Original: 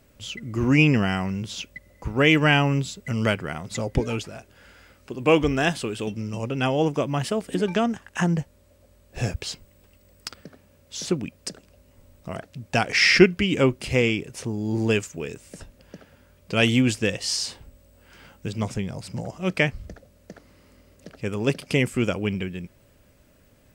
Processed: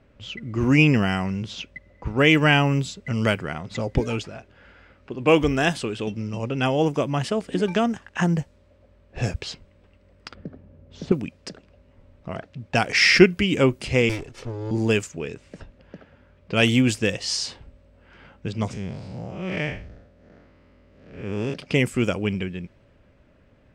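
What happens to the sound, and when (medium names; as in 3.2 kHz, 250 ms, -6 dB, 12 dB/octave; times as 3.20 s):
10.35–11.12 s: tilt shelf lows +9 dB, about 730 Hz
14.09–14.71 s: comb filter that takes the minimum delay 2.3 ms
18.73–21.54 s: spectral blur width 174 ms
whole clip: level-controlled noise filter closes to 2.6 kHz, open at -18 dBFS; trim +1 dB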